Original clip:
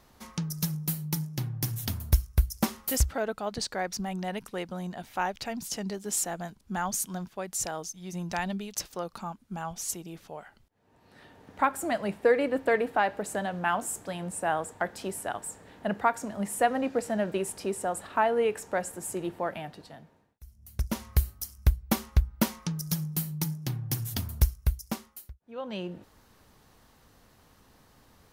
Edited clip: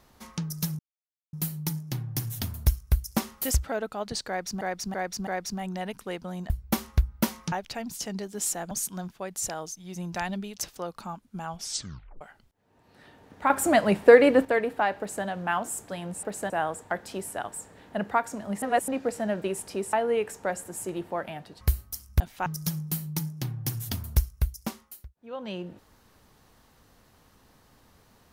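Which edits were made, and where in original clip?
0.79 insert silence 0.54 s
3.74–4.07 loop, 4 plays
4.97–5.23 swap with 21.69–22.71
6.42–6.88 cut
9.74 tape stop 0.64 s
11.67–12.62 gain +8.5 dB
13.15–13.42 copy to 14.4
16.52–16.78 reverse
17.83–18.21 cut
19.89–21.1 cut

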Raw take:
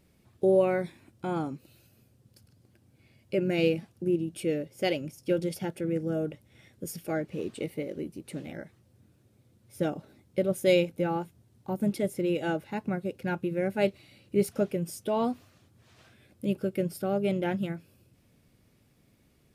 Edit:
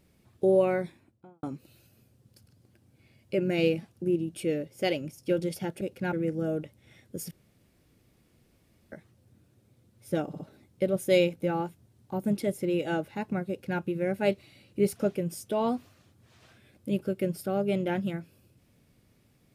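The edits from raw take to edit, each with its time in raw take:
0.71–1.43 studio fade out
6.99–8.6 room tone
9.95 stutter 0.06 s, 3 plays
13.04–13.36 copy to 5.81

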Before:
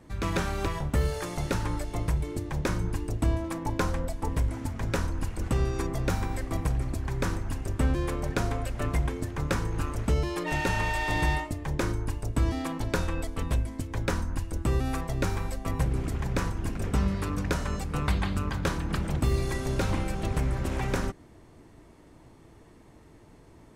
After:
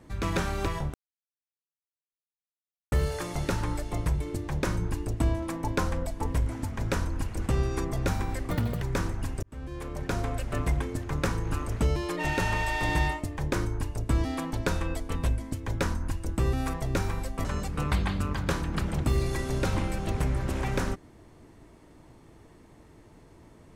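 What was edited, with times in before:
0.94 insert silence 1.98 s
6.53–7.09 speed 182%
7.7–8.59 fade in
15.72–17.61 cut

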